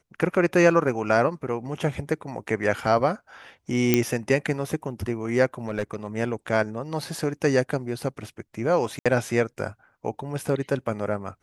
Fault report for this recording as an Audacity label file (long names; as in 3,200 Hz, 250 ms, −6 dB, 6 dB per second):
3.940000	3.940000	click −4 dBFS
5.680000	6.070000	clipping −20.5 dBFS
8.990000	9.060000	drop-out 66 ms